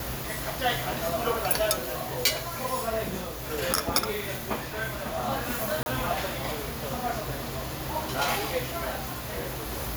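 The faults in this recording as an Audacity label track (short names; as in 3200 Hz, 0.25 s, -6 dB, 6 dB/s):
5.830000	5.860000	gap 31 ms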